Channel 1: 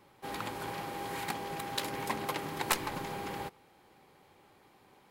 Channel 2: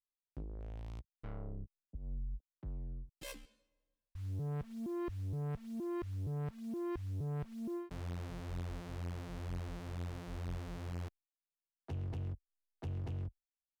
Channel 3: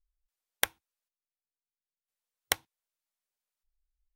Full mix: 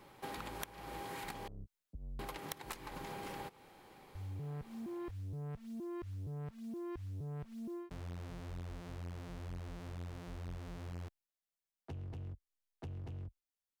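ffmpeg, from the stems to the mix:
ffmpeg -i stem1.wav -i stem2.wav -i stem3.wav -filter_complex "[0:a]volume=2.5dB,asplit=3[link_01][link_02][link_03];[link_01]atrim=end=1.48,asetpts=PTS-STARTPTS,afade=type=out:start_time=1.476:duration=0.004:curve=hsin[link_04];[link_02]atrim=start=1.48:end=2.19,asetpts=PTS-STARTPTS,volume=0[link_05];[link_03]atrim=start=2.19,asetpts=PTS-STARTPTS,afade=type=in:duration=0.004:curve=hsin[link_06];[link_04][link_05][link_06]concat=n=3:v=0:a=1[link_07];[1:a]volume=-1dB[link_08];[2:a]volume=2.5dB[link_09];[link_07][link_08][link_09]amix=inputs=3:normalize=0,acompressor=threshold=-41dB:ratio=16" out.wav

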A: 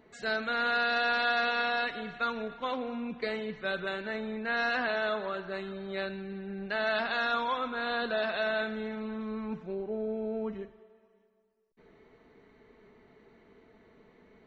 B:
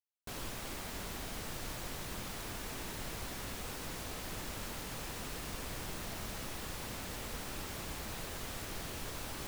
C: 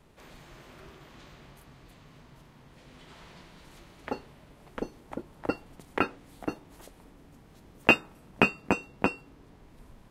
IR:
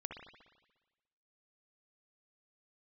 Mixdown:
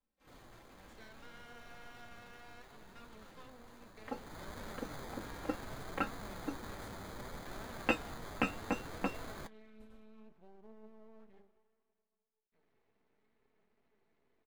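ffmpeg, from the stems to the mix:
-filter_complex "[0:a]bandreject=frequency=50:width_type=h:width=6,bandreject=frequency=100:width_type=h:width=6,bandreject=frequency=150:width_type=h:width=6,bandreject=frequency=200:width_type=h:width=6,bandreject=frequency=250:width_type=h:width=6,bandreject=frequency=300:width_type=h:width=6,bandreject=frequency=350:width_type=h:width=6,bandreject=frequency=400:width_type=h:width=6,bandreject=frequency=450:width_type=h:width=6,acompressor=threshold=-39dB:ratio=2.5,aeval=exprs='max(val(0),0)':channel_layout=same,adelay=750,volume=-10.5dB[link_01];[1:a]acrusher=samples=16:mix=1:aa=0.000001,afade=type=in:start_time=3.98:duration=0.61:silence=0.237137[link_02];[2:a]agate=range=-21dB:threshold=-50dB:ratio=16:detection=peak,aecho=1:1:3.8:0.97,volume=-8dB[link_03];[link_01][link_02][link_03]amix=inputs=3:normalize=0,flanger=delay=3.9:depth=7:regen=69:speed=0.65:shape=triangular"

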